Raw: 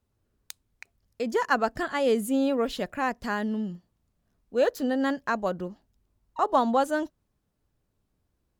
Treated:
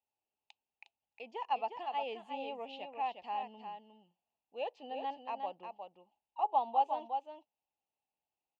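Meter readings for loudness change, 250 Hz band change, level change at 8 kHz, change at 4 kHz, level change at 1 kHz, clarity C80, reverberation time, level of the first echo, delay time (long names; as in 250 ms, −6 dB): −11.0 dB, −25.5 dB, below −30 dB, −10.0 dB, −5.0 dB, no reverb audible, no reverb audible, −6.5 dB, 358 ms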